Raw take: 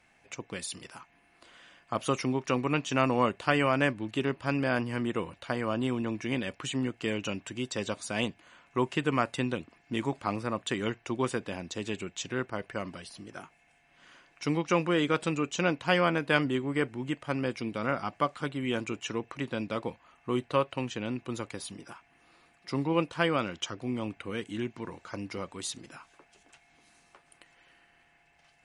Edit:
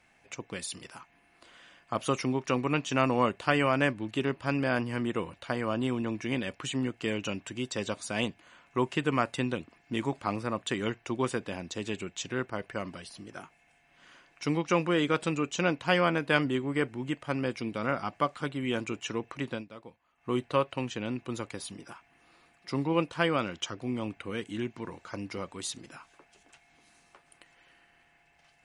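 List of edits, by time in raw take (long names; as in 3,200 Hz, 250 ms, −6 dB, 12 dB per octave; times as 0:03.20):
0:19.52–0:20.29: duck −14 dB, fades 0.13 s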